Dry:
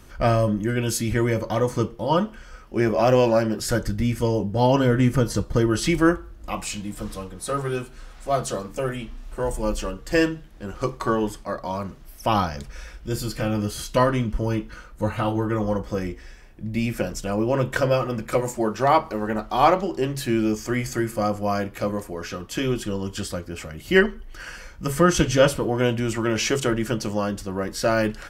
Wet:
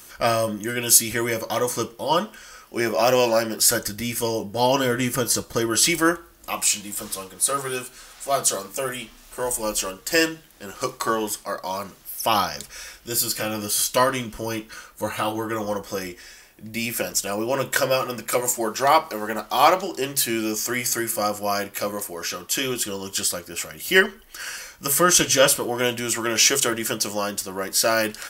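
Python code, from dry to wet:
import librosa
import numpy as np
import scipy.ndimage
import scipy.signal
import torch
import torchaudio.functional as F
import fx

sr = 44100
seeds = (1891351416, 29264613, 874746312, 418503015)

y = fx.riaa(x, sr, side='recording')
y = y * 10.0 ** (1.5 / 20.0)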